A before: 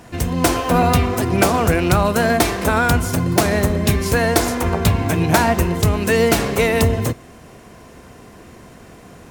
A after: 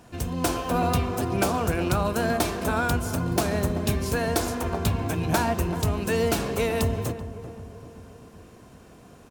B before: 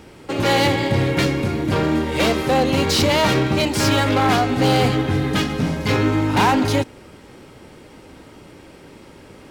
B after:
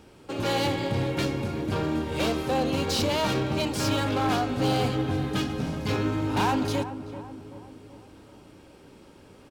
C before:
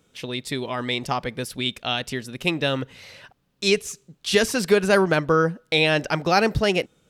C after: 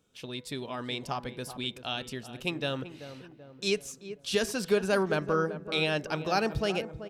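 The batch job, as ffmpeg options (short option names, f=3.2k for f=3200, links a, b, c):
-filter_complex "[0:a]equalizer=f=2k:w=5.8:g=-7,bandreject=f=165.4:t=h:w=4,bandreject=f=330.8:t=h:w=4,bandreject=f=496.2:t=h:w=4,bandreject=f=661.6:t=h:w=4,bandreject=f=827:t=h:w=4,bandreject=f=992.4:t=h:w=4,bandreject=f=1.1578k:t=h:w=4,bandreject=f=1.3232k:t=h:w=4,bandreject=f=1.4886k:t=h:w=4,bandreject=f=1.654k:t=h:w=4,bandreject=f=1.8194k:t=h:w=4,bandreject=f=1.9848k:t=h:w=4,bandreject=f=2.1502k:t=h:w=4,asplit=2[a][b];[b]adelay=384,lowpass=f=1.2k:p=1,volume=-11dB,asplit=2[c][d];[d]adelay=384,lowpass=f=1.2k:p=1,volume=0.55,asplit=2[e][f];[f]adelay=384,lowpass=f=1.2k:p=1,volume=0.55,asplit=2[g][h];[h]adelay=384,lowpass=f=1.2k:p=1,volume=0.55,asplit=2[i][j];[j]adelay=384,lowpass=f=1.2k:p=1,volume=0.55,asplit=2[k][l];[l]adelay=384,lowpass=f=1.2k:p=1,volume=0.55[m];[c][e][g][i][k][m]amix=inputs=6:normalize=0[n];[a][n]amix=inputs=2:normalize=0,volume=-8.5dB"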